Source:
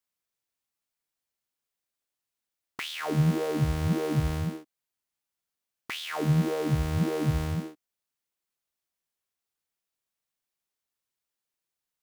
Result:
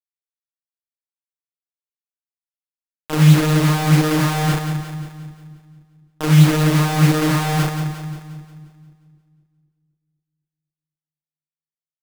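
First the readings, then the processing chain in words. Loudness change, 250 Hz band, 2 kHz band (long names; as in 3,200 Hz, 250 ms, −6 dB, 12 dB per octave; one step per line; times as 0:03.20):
+12.0 dB, +12.0 dB, +13.5 dB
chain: low-pass filter 1,300 Hz
in parallel at −2 dB: upward compression, threshold −27 dBFS
on the sum: channel vocoder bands 32, saw 154 Hz
bit reduction 5 bits
double-tracking delay 35 ms −8 dB
on a send: echo with a time of its own for lows and highs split 340 Hz, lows 254 ms, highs 177 ms, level −8 dB
on the sum: level +9 dB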